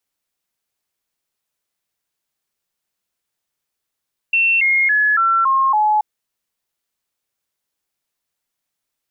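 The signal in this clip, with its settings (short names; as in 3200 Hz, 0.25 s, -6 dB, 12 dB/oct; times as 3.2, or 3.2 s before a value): stepped sine 2700 Hz down, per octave 3, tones 6, 0.28 s, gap 0.00 s -12 dBFS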